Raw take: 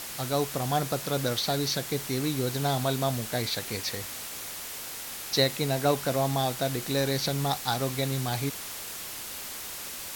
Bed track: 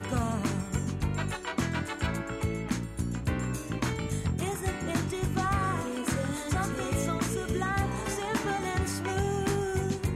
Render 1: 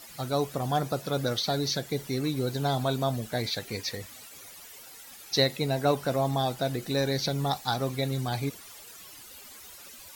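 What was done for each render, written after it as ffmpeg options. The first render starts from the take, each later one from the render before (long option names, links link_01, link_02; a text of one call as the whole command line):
ffmpeg -i in.wav -af "afftdn=noise_reduction=14:noise_floor=-39" out.wav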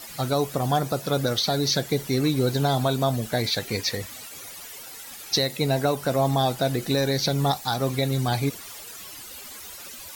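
ffmpeg -i in.wav -filter_complex "[0:a]acrossover=split=6300[link_01][link_02];[link_01]alimiter=limit=-19dB:level=0:latency=1:release=291[link_03];[link_03][link_02]amix=inputs=2:normalize=0,acontrast=80" out.wav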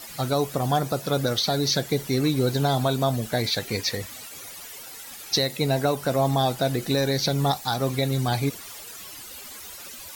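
ffmpeg -i in.wav -af anull out.wav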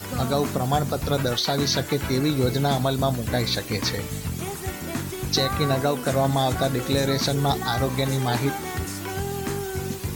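ffmpeg -i in.wav -i bed.wav -filter_complex "[1:a]volume=0dB[link_01];[0:a][link_01]amix=inputs=2:normalize=0" out.wav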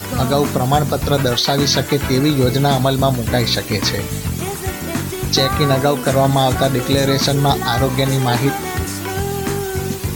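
ffmpeg -i in.wav -af "volume=7.5dB,alimiter=limit=-3dB:level=0:latency=1" out.wav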